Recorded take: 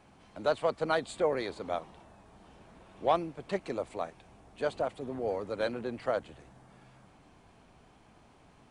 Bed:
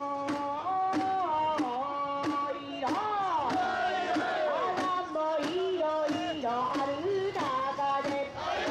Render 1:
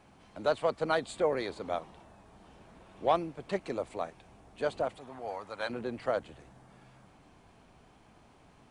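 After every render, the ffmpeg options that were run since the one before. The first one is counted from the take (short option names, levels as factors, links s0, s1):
-filter_complex "[0:a]asettb=1/sr,asplit=3[s0][s1][s2];[s0]atrim=end=4.994[s3];[s1]atrim=start=4.99:end=5.7,asetpts=PTS-STARTPTS,afade=t=in:d=0.004:c=qsin,afade=t=out:st=0.706:d=0.004:c=qsin,lowshelf=f=600:t=q:w=1.5:g=-9.5[s4];[s2]atrim=start=5.696[s5];[s3][s4]acrossfade=d=0.004:c1=hsin:c2=qsin[s6];[s6][s5]acrossfade=d=0.004:c1=qsin:c2=hsin"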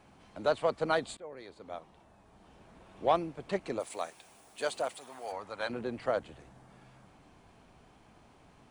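-filter_complex "[0:a]asplit=3[s0][s1][s2];[s0]afade=t=out:st=3.79:d=0.02[s3];[s1]aemphasis=mode=production:type=riaa,afade=t=in:st=3.79:d=0.02,afade=t=out:st=5.31:d=0.02[s4];[s2]afade=t=in:st=5.31:d=0.02[s5];[s3][s4][s5]amix=inputs=3:normalize=0,asplit=2[s6][s7];[s6]atrim=end=1.17,asetpts=PTS-STARTPTS,afade=t=out:st=1.166:d=0.004:c=hsin:silence=0.0891251[s8];[s7]atrim=start=1.17,asetpts=PTS-STARTPTS,afade=t=in:d=1.83:silence=0.0891251[s9];[s8][s9]concat=n=2:v=0:a=1"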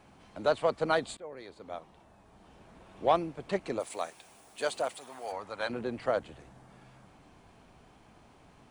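-af "volume=1.19"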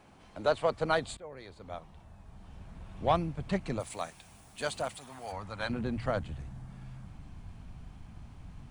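-af "bandreject=f=60:t=h:w=6,bandreject=f=120:t=h:w=6,asubboost=boost=10.5:cutoff=130"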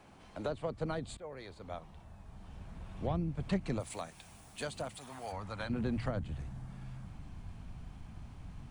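-filter_complex "[0:a]acrossover=split=360[s0][s1];[s1]acompressor=threshold=0.0126:ratio=10[s2];[s0][s2]amix=inputs=2:normalize=0"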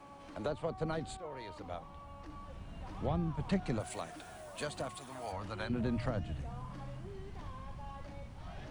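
-filter_complex "[1:a]volume=0.0891[s0];[0:a][s0]amix=inputs=2:normalize=0"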